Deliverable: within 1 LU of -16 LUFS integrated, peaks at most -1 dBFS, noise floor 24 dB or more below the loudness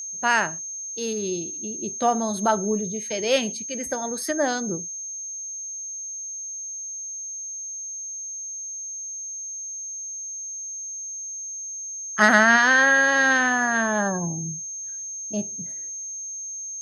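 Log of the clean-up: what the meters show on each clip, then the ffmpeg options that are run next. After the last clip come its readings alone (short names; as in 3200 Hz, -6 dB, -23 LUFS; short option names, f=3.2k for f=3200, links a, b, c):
steady tone 6400 Hz; tone level -31 dBFS; loudness -24.5 LUFS; peak -4.5 dBFS; loudness target -16.0 LUFS
-> -af "bandreject=f=6.4k:w=30"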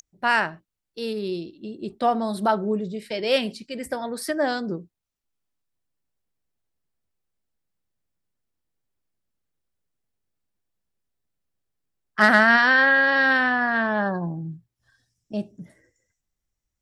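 steady tone none; loudness -21.5 LUFS; peak -5.0 dBFS; loudness target -16.0 LUFS
-> -af "volume=5.5dB,alimiter=limit=-1dB:level=0:latency=1"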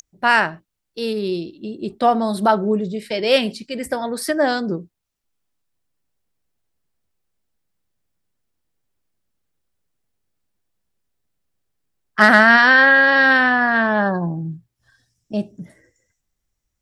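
loudness -16.0 LUFS; peak -1.0 dBFS; noise floor -78 dBFS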